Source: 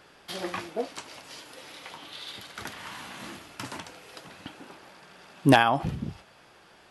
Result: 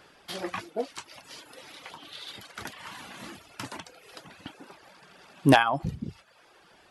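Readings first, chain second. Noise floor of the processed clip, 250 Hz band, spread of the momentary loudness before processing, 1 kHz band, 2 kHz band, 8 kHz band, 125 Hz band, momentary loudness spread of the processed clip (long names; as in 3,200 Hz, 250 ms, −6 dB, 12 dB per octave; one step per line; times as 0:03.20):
−59 dBFS, −0.5 dB, 24 LU, −1.5 dB, −0.5 dB, −1.0 dB, −0.5 dB, 25 LU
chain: reverb reduction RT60 0.76 s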